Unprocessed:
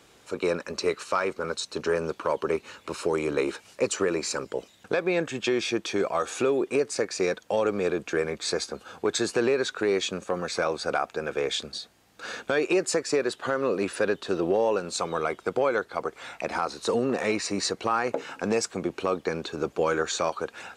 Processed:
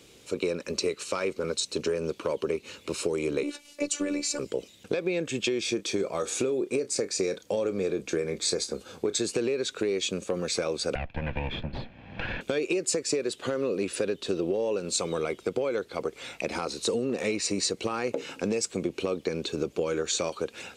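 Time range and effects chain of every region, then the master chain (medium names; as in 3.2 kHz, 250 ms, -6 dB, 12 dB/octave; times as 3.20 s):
3.43–4.39 s: high-pass 79 Hz + robot voice 290 Hz
5.63–9.17 s: peaking EQ 2.8 kHz -5.5 dB 0.46 oct + doubling 31 ms -13 dB
10.95–12.41 s: comb filter that takes the minimum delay 1.2 ms + low-pass 2.7 kHz 24 dB/octave + three bands compressed up and down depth 100%
whole clip: high-order bell 1.1 kHz -9.5 dB; compression, threshold -28 dBFS; dynamic bell 8 kHz, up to +4 dB, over -52 dBFS, Q 2.4; trim +3.5 dB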